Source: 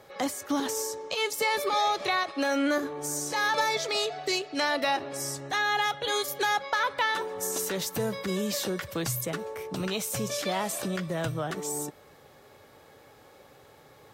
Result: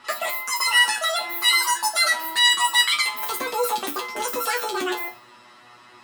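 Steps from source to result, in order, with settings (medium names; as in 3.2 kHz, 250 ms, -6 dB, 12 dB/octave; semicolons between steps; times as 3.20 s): level-controlled noise filter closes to 2.4 kHz, open at -25.5 dBFS; flutter echo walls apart 3.3 m, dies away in 0.41 s; plate-style reverb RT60 0.92 s, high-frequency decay 0.9×, DRR 9.5 dB; speed mistake 33 rpm record played at 78 rpm; trim +2 dB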